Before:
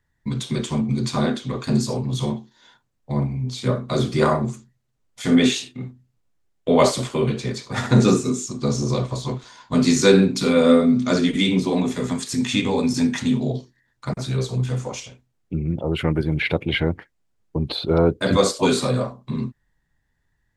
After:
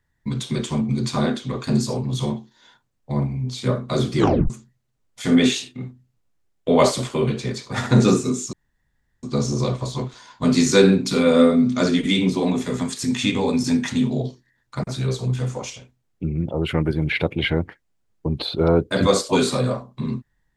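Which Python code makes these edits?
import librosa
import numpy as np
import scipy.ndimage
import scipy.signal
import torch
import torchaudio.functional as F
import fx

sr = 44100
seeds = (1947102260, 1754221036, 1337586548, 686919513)

y = fx.edit(x, sr, fx.tape_stop(start_s=4.17, length_s=0.33),
    fx.insert_room_tone(at_s=8.53, length_s=0.7), tone=tone)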